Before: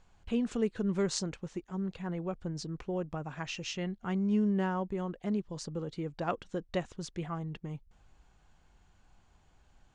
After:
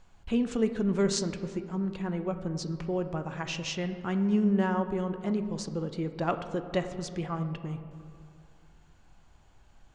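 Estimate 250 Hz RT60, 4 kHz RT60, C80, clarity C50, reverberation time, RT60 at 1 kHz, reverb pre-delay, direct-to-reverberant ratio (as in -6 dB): 2.6 s, 1.2 s, 11.0 dB, 10.0 dB, 2.4 s, 2.3 s, 3 ms, 8.0 dB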